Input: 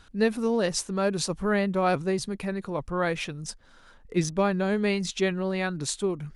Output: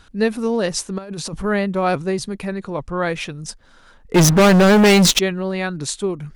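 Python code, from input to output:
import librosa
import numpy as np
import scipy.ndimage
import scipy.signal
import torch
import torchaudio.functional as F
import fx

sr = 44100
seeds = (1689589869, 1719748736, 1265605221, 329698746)

y = fx.over_compress(x, sr, threshold_db=-35.0, ratio=-1.0, at=(0.98, 1.44))
y = fx.lowpass(y, sr, hz=9400.0, slope=24, at=(2.52, 3.1))
y = fx.leveller(y, sr, passes=5, at=(4.14, 5.19))
y = y * librosa.db_to_amplitude(5.0)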